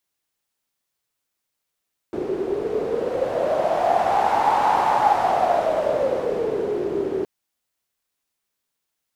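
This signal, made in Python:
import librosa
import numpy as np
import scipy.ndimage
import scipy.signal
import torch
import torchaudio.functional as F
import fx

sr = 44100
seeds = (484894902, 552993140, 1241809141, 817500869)

y = fx.wind(sr, seeds[0], length_s=5.12, low_hz=380.0, high_hz=850.0, q=8.0, gusts=1, swing_db=7.0)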